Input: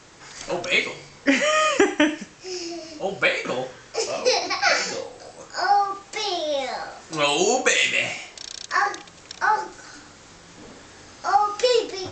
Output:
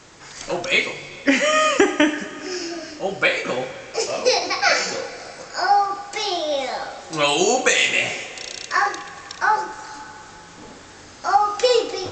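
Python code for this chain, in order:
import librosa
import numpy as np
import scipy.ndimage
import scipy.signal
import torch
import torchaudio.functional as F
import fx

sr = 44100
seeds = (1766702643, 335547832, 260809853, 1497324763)

y = fx.peak_eq(x, sr, hz=1600.0, db=14.5, octaves=0.34, at=(2.13, 2.91))
y = fx.rev_plate(y, sr, seeds[0], rt60_s=4.1, hf_ratio=0.9, predelay_ms=0, drr_db=13.0)
y = y * 10.0 ** (2.0 / 20.0)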